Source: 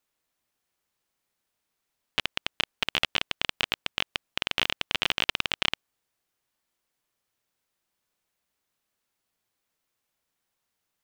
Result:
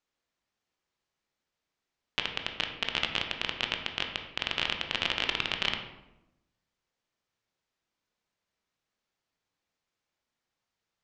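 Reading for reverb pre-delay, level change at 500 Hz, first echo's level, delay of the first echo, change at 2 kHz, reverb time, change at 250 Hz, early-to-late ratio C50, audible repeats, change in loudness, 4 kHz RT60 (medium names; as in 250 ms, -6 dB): 17 ms, -1.5 dB, no echo, no echo, -2.5 dB, 0.90 s, -1.0 dB, 7.0 dB, no echo, -2.5 dB, 0.60 s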